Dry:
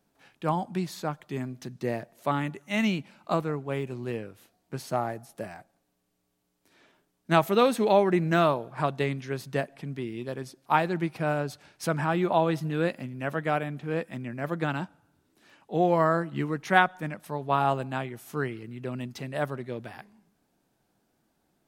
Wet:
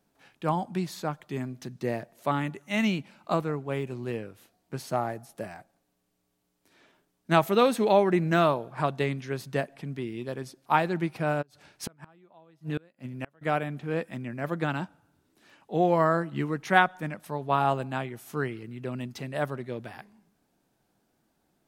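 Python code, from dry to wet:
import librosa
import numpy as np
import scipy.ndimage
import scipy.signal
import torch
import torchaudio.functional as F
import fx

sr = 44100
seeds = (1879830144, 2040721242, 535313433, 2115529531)

y = fx.gate_flip(x, sr, shuts_db=-20.0, range_db=-32, at=(11.41, 13.41), fade=0.02)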